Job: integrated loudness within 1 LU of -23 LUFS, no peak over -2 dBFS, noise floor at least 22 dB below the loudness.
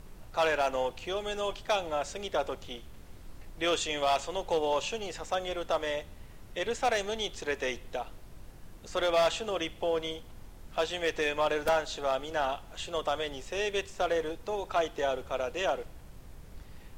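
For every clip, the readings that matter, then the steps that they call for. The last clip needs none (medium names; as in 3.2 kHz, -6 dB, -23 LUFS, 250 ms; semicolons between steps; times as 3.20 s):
clipped samples 0.5%; clipping level -20.5 dBFS; noise floor -50 dBFS; noise floor target -54 dBFS; loudness -31.5 LUFS; peak level -20.5 dBFS; loudness target -23.0 LUFS
-> clip repair -20.5 dBFS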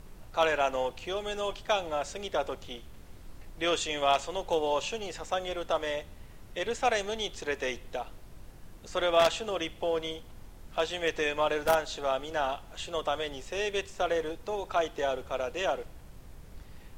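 clipped samples 0.0%; noise floor -50 dBFS; noise floor target -53 dBFS
-> noise print and reduce 6 dB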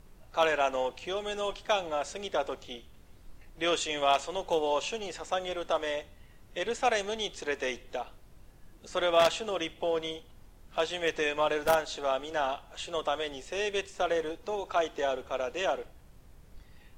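noise floor -55 dBFS; loudness -31.0 LUFS; peak level -11.5 dBFS; loudness target -23.0 LUFS
-> trim +8 dB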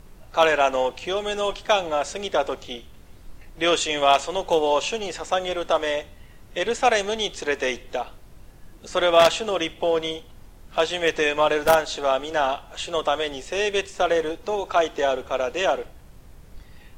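loudness -23.0 LUFS; peak level -3.5 dBFS; noise floor -47 dBFS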